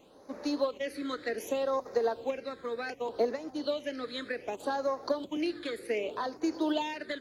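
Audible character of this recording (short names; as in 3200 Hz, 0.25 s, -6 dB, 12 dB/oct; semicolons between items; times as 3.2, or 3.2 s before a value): phasing stages 8, 0.66 Hz, lowest notch 800–3000 Hz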